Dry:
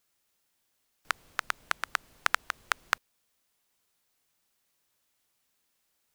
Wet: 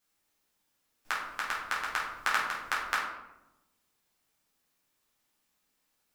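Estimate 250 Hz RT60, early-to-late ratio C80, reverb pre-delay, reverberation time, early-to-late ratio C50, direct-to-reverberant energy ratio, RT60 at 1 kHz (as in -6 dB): 1.3 s, 6.0 dB, 3 ms, 0.90 s, 2.5 dB, -7.0 dB, 0.85 s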